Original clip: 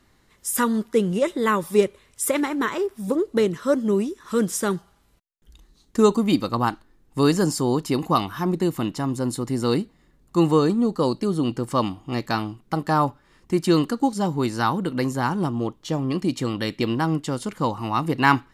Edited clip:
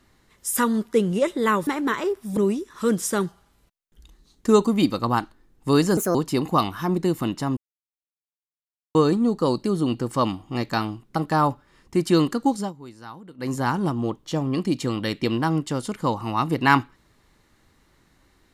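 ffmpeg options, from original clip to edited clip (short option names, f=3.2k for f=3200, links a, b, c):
-filter_complex "[0:a]asplit=9[a][b][c][d][e][f][g][h][i];[a]atrim=end=1.672[j];[b]atrim=start=2.408:end=3.112[k];[c]atrim=start=3.868:end=7.474[l];[d]atrim=start=7.47:end=7.72,asetpts=PTS-STARTPTS,asetrate=61740,aresample=44100,atrim=end_sample=7875,asetpts=PTS-STARTPTS[m];[e]atrim=start=7.716:end=9.14,asetpts=PTS-STARTPTS,afade=t=out:st=1.42:d=0.004:c=hsin[n];[f]atrim=start=9.14:end=10.52,asetpts=PTS-STARTPTS,volume=0[o];[g]atrim=start=10.52:end=14.3,asetpts=PTS-STARTPTS,afade=t=in:d=0.004:c=hsin,afade=t=out:st=3.63:d=0.15:silence=0.125893[p];[h]atrim=start=14.3:end=14.95,asetpts=PTS-STARTPTS,volume=-18dB[q];[i]atrim=start=14.95,asetpts=PTS-STARTPTS,afade=t=in:d=0.15:silence=0.125893[r];[j][k]acrossfade=d=0.004:c1=hsin:c2=hsin[s];[s][l]acrossfade=d=0.004:c1=hsin:c2=hsin[t];[t][m]acrossfade=d=0.004:c1=hsin:c2=hsin[u];[n][o][p][q][r]concat=n=5:v=0:a=1[v];[u][v]acrossfade=d=0.004:c1=hsin:c2=hsin"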